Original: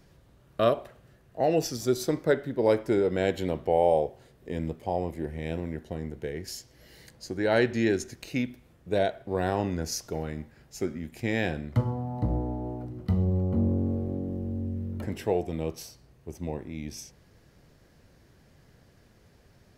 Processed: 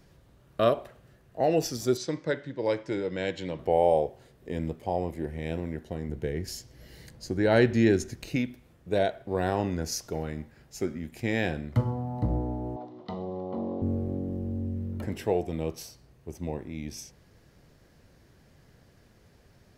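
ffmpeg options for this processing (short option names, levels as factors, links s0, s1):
-filter_complex "[0:a]asettb=1/sr,asplit=3[s0][s1][s2];[s0]atrim=end=1.974[s3];[s1]atrim=start=1.97:end=3.59,asetpts=PTS-STARTPTS,afade=t=in:d=0.004:c=qsin,afade=t=out:st=1.616:d=0.004:c=qsin,highpass=130,equalizer=f=230:t=q:w=4:g=-10,equalizer=f=400:t=q:w=4:g=-9,equalizer=f=710:t=q:w=4:g=-10,equalizer=f=1300:t=q:w=4:g=-6,lowpass=f=7000:w=0.5412,lowpass=f=7000:w=1.3066[s4];[s2]atrim=start=3.586[s5];[s3][s4]acrossfade=d=0.004:c1=hsin:c2=qsin[s6];[s6][s5]acrossfade=d=0.004:c1=qsin:c2=hsin,asettb=1/sr,asplit=3[s7][s8][s9];[s7]atrim=end=6.094[s10];[s8]atrim=start=6.09:end=8.36,asetpts=PTS-STARTPTS,afade=t=in:d=0.004:c=qsin,afade=t=out:st=2.266:d=0.004:c=qsin,lowshelf=f=250:g=8[s11];[s9]atrim=start=8.356[s12];[s10][s11]acrossfade=d=0.004:c1=hsin:c2=qsin[s13];[s13][s12]acrossfade=d=0.004:c1=qsin:c2=hsin,asettb=1/sr,asplit=3[s14][s15][s16];[s14]atrim=end=12.764[s17];[s15]atrim=start=12.76:end=13.82,asetpts=PTS-STARTPTS,afade=t=in:d=0.004:c=qsin,afade=t=out:st=1.056:d=0.004:c=qsin,highpass=330,equalizer=f=700:t=q:w=4:g=7,equalizer=f=1000:t=q:w=4:g=9,equalizer=f=1500:t=q:w=4:g=-6,equalizer=f=2500:t=q:w=4:g=-4,equalizer=f=3600:t=q:w=4:g=8,lowpass=f=5500:w=0.5412,lowpass=f=5500:w=1.3066[s18];[s16]atrim=start=13.816[s19];[s17][s18]acrossfade=d=0.004:c1=hsin:c2=qsin[s20];[s20][s19]acrossfade=d=0.004:c1=qsin:c2=hsin"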